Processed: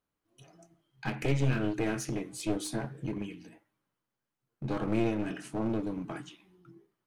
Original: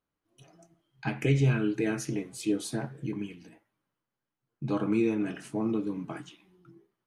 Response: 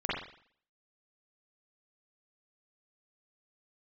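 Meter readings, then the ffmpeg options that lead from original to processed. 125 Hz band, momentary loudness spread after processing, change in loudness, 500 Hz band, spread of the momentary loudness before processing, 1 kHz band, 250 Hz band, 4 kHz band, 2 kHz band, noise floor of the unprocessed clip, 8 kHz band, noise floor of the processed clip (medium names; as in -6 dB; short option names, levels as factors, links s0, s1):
-3.5 dB, 12 LU, -3.0 dB, -2.5 dB, 14 LU, +1.0 dB, -3.5 dB, -0.5 dB, -1.5 dB, under -85 dBFS, -0.5 dB, under -85 dBFS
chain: -af "aeval=exprs='clip(val(0),-1,0.0211)':c=same,bandreject=f=153.3:t=h:w=4,bandreject=f=306.6:t=h:w=4"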